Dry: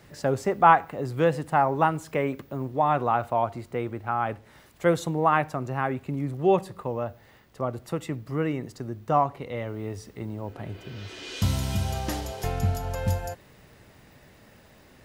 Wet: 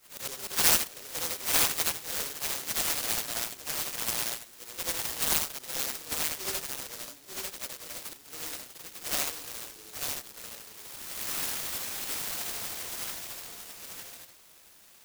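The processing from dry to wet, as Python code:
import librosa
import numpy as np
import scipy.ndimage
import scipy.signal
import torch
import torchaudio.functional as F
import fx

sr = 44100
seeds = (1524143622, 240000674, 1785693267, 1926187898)

p1 = fx.frame_reverse(x, sr, frame_ms=208.0)
p2 = scipy.signal.sosfilt(scipy.signal.butter(2, 840.0, 'highpass', fs=sr, output='sos'), p1)
p3 = fx.peak_eq(p2, sr, hz=3400.0, db=14.5, octaves=1.6)
p4 = p3 + fx.echo_single(p3, sr, ms=898, db=-4.0, dry=0)
p5 = fx.noise_mod_delay(p4, sr, seeds[0], noise_hz=5500.0, depth_ms=0.42)
y = p5 * librosa.db_to_amplitude(-3.0)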